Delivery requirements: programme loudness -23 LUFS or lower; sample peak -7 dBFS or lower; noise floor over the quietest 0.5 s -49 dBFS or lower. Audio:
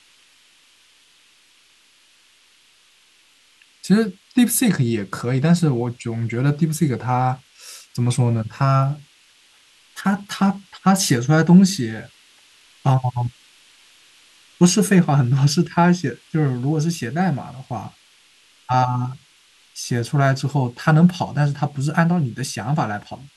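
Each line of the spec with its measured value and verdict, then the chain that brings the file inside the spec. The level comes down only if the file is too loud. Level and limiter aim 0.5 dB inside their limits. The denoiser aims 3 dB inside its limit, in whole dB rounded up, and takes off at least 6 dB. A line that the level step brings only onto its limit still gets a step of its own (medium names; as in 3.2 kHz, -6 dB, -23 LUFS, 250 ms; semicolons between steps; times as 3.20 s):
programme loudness -19.5 LUFS: fail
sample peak -2.0 dBFS: fail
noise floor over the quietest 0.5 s -56 dBFS: pass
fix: trim -4 dB; peak limiter -7.5 dBFS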